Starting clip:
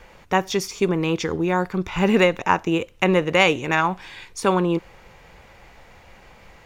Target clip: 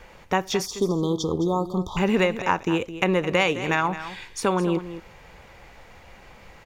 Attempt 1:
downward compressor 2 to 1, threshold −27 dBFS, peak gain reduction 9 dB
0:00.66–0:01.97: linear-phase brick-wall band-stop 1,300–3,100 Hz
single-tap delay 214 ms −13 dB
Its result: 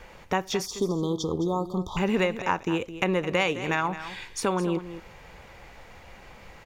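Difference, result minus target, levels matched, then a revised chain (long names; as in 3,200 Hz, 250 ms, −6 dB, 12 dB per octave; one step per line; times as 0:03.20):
downward compressor: peak gain reduction +3.5 dB
downward compressor 2 to 1, threshold −20 dBFS, peak gain reduction 5.5 dB
0:00.66–0:01.97: linear-phase brick-wall band-stop 1,300–3,100 Hz
single-tap delay 214 ms −13 dB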